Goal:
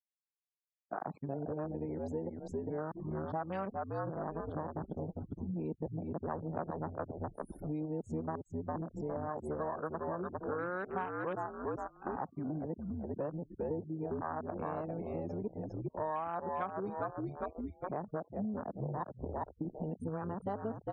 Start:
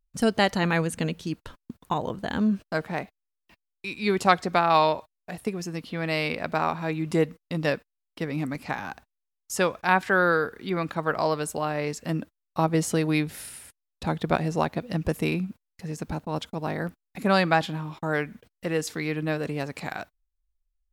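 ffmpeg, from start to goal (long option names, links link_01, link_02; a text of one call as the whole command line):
ffmpeg -i in.wav -filter_complex "[0:a]areverse,highshelf=frequency=1500:width_type=q:width=1.5:gain=-7,asplit=6[link_01][link_02][link_03][link_04][link_05][link_06];[link_02]adelay=404,afreqshift=-67,volume=-4dB[link_07];[link_03]adelay=808,afreqshift=-134,volume=-12.4dB[link_08];[link_04]adelay=1212,afreqshift=-201,volume=-20.8dB[link_09];[link_05]adelay=1616,afreqshift=-268,volume=-29.2dB[link_10];[link_06]adelay=2020,afreqshift=-335,volume=-37.6dB[link_11];[link_01][link_07][link_08][link_09][link_10][link_11]amix=inputs=6:normalize=0,agate=range=-33dB:threshold=-42dB:ratio=3:detection=peak,afwtdn=0.0447,adynamicequalizer=threshold=0.00251:dfrequency=6900:dqfactor=0.99:tfrequency=6900:tqfactor=0.99:attack=5:release=100:ratio=0.375:range=2:mode=boostabove:tftype=bell,acompressor=threshold=-37dB:ratio=8,afftfilt=real='re*gte(hypot(re,im),0.001)':imag='im*gte(hypot(re,im),0.001)':win_size=1024:overlap=0.75,highpass=frequency=110:poles=1,volume=2.5dB" out.wav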